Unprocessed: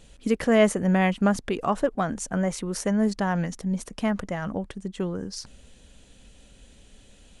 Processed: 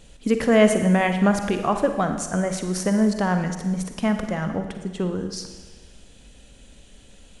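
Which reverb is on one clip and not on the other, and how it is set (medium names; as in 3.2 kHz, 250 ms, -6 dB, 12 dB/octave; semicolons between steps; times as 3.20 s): Schroeder reverb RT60 1.3 s, DRR 6.5 dB; trim +2.5 dB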